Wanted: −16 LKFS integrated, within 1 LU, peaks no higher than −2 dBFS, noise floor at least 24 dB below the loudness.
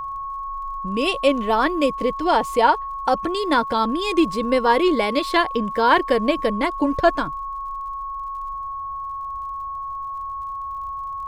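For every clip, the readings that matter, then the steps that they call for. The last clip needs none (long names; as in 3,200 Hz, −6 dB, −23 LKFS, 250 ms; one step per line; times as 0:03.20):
crackle rate 42 per second; interfering tone 1,100 Hz; level of the tone −27 dBFS; integrated loudness −22.0 LKFS; sample peak −4.0 dBFS; target loudness −16.0 LKFS
→ click removal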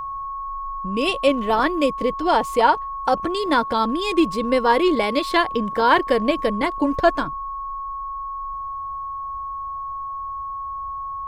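crackle rate 1.1 per second; interfering tone 1,100 Hz; level of the tone −27 dBFS
→ notch filter 1,100 Hz, Q 30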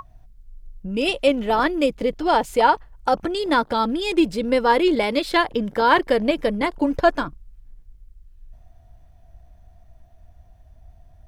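interfering tone none found; integrated loudness −20.5 LKFS; sample peak −4.5 dBFS; target loudness −16.0 LKFS
→ level +4.5 dB
brickwall limiter −2 dBFS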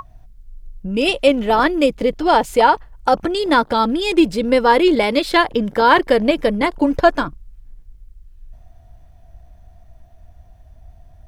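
integrated loudness −16.5 LKFS; sample peak −2.0 dBFS; background noise floor −47 dBFS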